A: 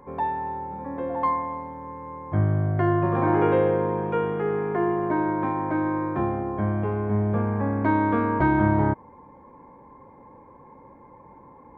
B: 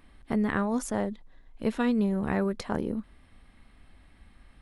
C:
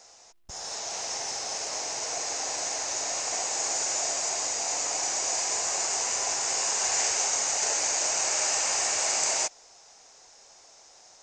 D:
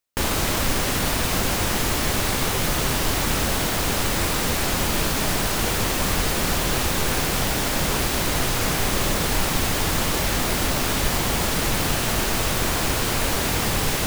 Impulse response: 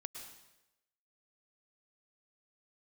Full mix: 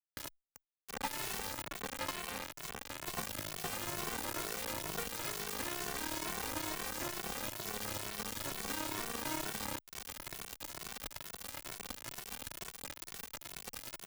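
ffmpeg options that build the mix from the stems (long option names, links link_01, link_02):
-filter_complex "[0:a]acompressor=threshold=-27dB:ratio=4,highpass=130,adelay=850,volume=2.5dB[link_01];[1:a]adynamicsmooth=sensitivity=6.5:basefreq=1200,volume=-16dB,asplit=2[link_02][link_03];[2:a]acrossover=split=1300|3600[link_04][link_05][link_06];[link_04]acompressor=threshold=-46dB:ratio=4[link_07];[link_05]acompressor=threshold=-40dB:ratio=4[link_08];[link_06]acompressor=threshold=-42dB:ratio=4[link_09];[link_07][link_08][link_09]amix=inputs=3:normalize=0,acrusher=bits=8:mix=0:aa=0.000001,adelay=2050,volume=-15.5dB[link_10];[3:a]flanger=delay=4.2:depth=6.3:regen=81:speed=0.24:shape=triangular,volume=-9dB[link_11];[link_03]apad=whole_len=620153[link_12];[link_11][link_12]sidechaincompress=threshold=-60dB:ratio=4:attack=41:release=101[link_13];[link_01][link_02][link_10][link_13]amix=inputs=4:normalize=0,acrossover=split=1200|3000[link_14][link_15][link_16];[link_14]acompressor=threshold=-36dB:ratio=4[link_17];[link_15]acompressor=threshold=-45dB:ratio=4[link_18];[link_16]acompressor=threshold=-42dB:ratio=4[link_19];[link_17][link_18][link_19]amix=inputs=3:normalize=0,acrusher=bits=4:mix=0:aa=0.000001,asplit=2[link_20][link_21];[link_21]adelay=2.2,afreqshift=2.2[link_22];[link_20][link_22]amix=inputs=2:normalize=1"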